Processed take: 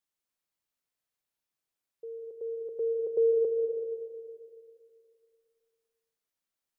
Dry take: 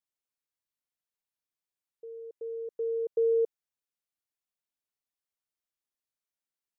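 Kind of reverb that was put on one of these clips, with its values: digital reverb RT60 2.3 s, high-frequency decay 0.4×, pre-delay 0.115 s, DRR 3.5 dB; gain +2.5 dB

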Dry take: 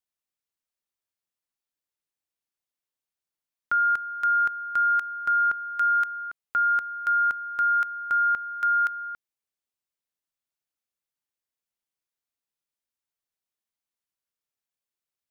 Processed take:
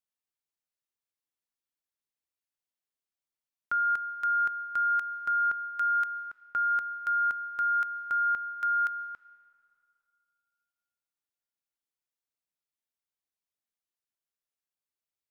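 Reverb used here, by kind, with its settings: digital reverb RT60 2.5 s, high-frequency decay 0.75×, pre-delay 0.1 s, DRR 17.5 dB; gain -5 dB

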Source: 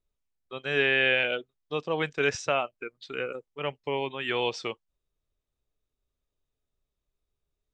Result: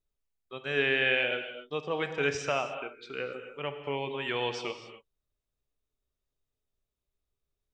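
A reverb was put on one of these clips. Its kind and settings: non-linear reverb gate 0.3 s flat, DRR 7 dB; gain -3.5 dB

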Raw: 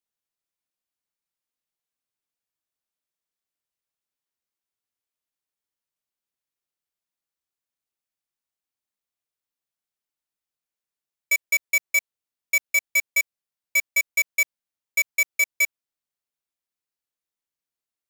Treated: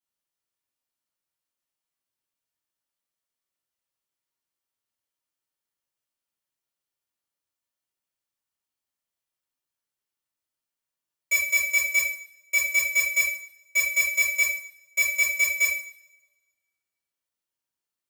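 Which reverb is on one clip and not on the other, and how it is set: two-slope reverb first 0.52 s, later 1.5 s, from -25 dB, DRR -8.5 dB; gain -7.5 dB

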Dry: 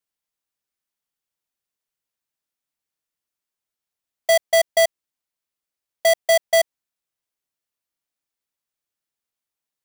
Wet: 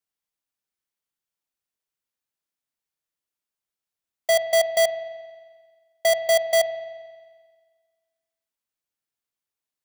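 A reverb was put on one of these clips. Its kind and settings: spring tank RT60 1.6 s, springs 44 ms, chirp 35 ms, DRR 9.5 dB; gain -3 dB

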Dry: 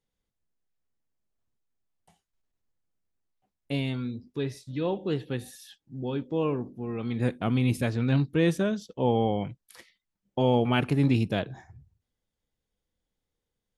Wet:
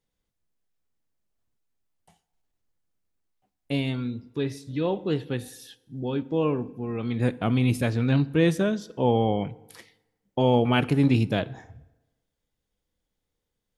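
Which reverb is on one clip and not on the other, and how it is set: FDN reverb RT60 1.1 s, low-frequency decay 0.95×, high-frequency decay 0.7×, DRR 18 dB; gain +2.5 dB

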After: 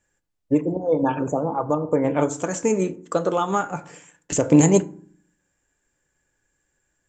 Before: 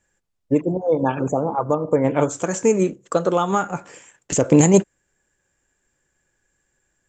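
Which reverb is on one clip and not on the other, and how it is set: FDN reverb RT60 0.52 s, low-frequency decay 1.5×, high-frequency decay 0.5×, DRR 11.5 dB; gain -2.5 dB

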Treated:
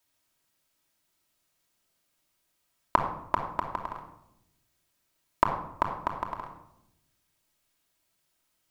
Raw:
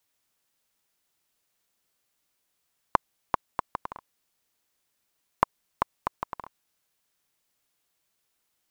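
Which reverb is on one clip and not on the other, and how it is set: shoebox room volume 2300 m³, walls furnished, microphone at 2.8 m; gain -1 dB

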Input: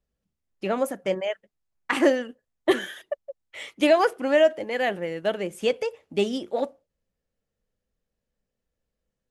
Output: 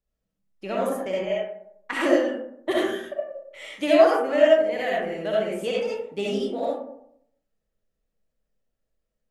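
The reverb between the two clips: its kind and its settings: digital reverb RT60 0.72 s, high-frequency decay 0.4×, pre-delay 25 ms, DRR -5.5 dB; gain -6.5 dB

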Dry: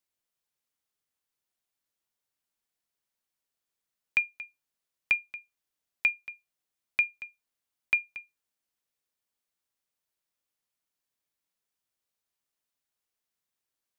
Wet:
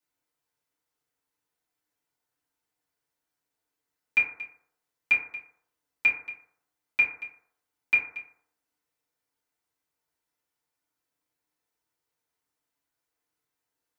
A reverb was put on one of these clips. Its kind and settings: FDN reverb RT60 0.66 s, low-frequency decay 0.75×, high-frequency decay 0.3×, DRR -8.5 dB; gain -4 dB

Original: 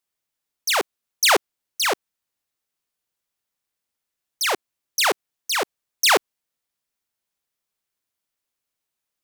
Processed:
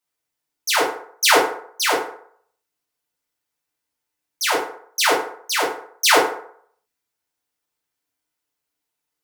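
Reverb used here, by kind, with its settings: FDN reverb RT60 0.61 s, low-frequency decay 0.7×, high-frequency decay 0.55×, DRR -5.5 dB; gain -3.5 dB

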